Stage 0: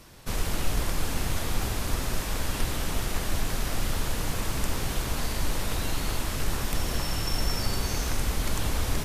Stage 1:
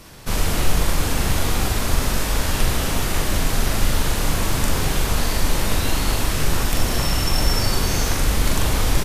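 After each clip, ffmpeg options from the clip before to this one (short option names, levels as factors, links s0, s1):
-filter_complex "[0:a]asplit=2[s0][s1];[s1]adelay=41,volume=0.668[s2];[s0][s2]amix=inputs=2:normalize=0,volume=2.24"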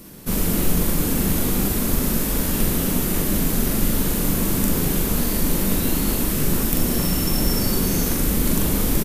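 -af "firequalizer=gain_entry='entry(120,0);entry(180,12);entry(720,-2);entry(5000,-1);entry(14000,14)':delay=0.05:min_phase=1,volume=0.631"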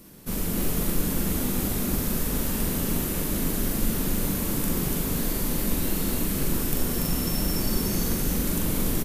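-af "aecho=1:1:288:0.668,volume=0.447"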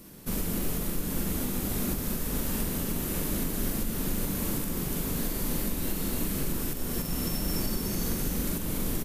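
-af "alimiter=limit=0.112:level=0:latency=1:release=449"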